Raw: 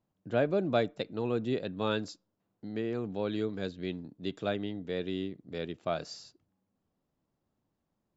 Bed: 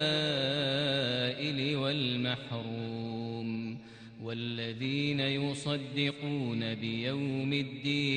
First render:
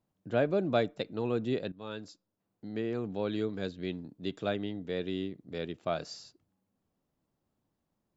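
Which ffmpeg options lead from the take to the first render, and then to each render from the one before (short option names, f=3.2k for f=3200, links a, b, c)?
-filter_complex "[0:a]asplit=2[a][b];[a]atrim=end=1.72,asetpts=PTS-STARTPTS,afade=t=out:st=1.716:d=0.004:c=hsin:silence=0.16788[c];[b]atrim=start=1.72,asetpts=PTS-STARTPTS,afade=t=in:d=1.1:silence=0.16788[d];[c][d]concat=n=2:v=0:a=1"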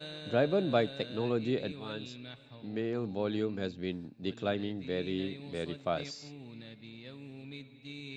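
-filter_complex "[1:a]volume=-14.5dB[a];[0:a][a]amix=inputs=2:normalize=0"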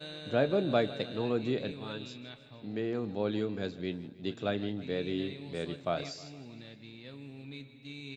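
-filter_complex "[0:a]asplit=2[a][b];[b]adelay=29,volume=-14dB[c];[a][c]amix=inputs=2:normalize=0,aecho=1:1:156|312|468|624|780:0.126|0.0705|0.0395|0.0221|0.0124"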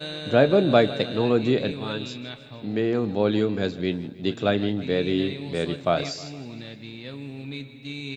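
-af "volume=10dB"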